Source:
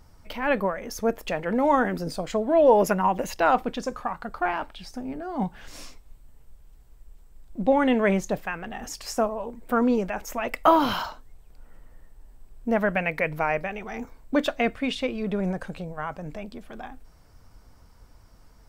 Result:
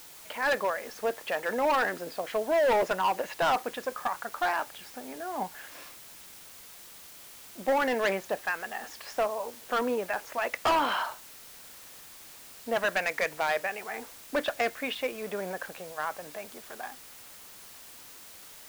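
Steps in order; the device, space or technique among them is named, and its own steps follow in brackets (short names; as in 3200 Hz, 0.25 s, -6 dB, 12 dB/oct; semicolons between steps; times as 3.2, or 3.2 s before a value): drive-through speaker (BPF 490–3100 Hz; bell 1700 Hz +5.5 dB 0.21 oct; hard clip -21.5 dBFS, distortion -9 dB; white noise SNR 17 dB)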